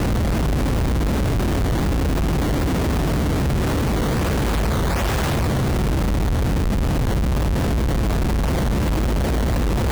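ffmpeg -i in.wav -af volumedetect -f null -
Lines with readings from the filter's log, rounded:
mean_volume: -19.1 dB
max_volume: -14.5 dB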